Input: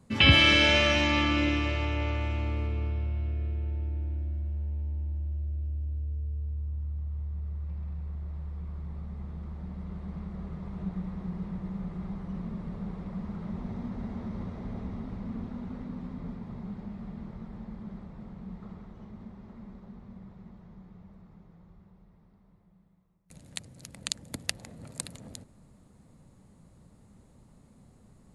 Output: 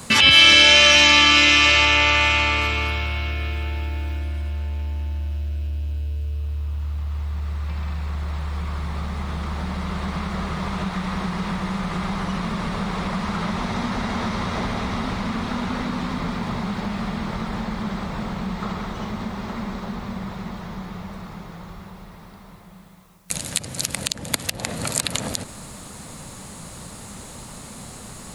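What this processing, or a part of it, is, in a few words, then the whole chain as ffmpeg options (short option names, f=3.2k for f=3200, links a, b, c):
mastering chain: -filter_complex "[0:a]equalizer=f=2k:t=o:w=0.42:g=-3,acrossover=split=850|4100[a][b][c];[a]acompressor=threshold=-38dB:ratio=4[d];[b]acompressor=threshold=-41dB:ratio=4[e];[c]acompressor=threshold=-46dB:ratio=4[f];[d][e][f]amix=inputs=3:normalize=0,acompressor=threshold=-41dB:ratio=2,asoftclip=type=tanh:threshold=-22dB,tiltshelf=f=760:g=-9,alimiter=level_in=25dB:limit=-1dB:release=50:level=0:latency=1,asettb=1/sr,asplit=3[g][h][i];[g]atrim=end=2.614[j];[h]atrim=start=2.61:end=4.19,asetpts=PTS-STARTPTS,afade=t=in:d=0.004:c=qsin,afade=t=out:st=1.576:d=0.004:c=qsin,highshelf=f=7.9k:g=5.5[k];[i]atrim=start=4.186[l];[j][k]acrossfade=d=0.004:c1=hsin:c2=qsin[m];[m][l]acrossfade=d=0.004:c1=qsin:c2=hsin,volume=-1dB"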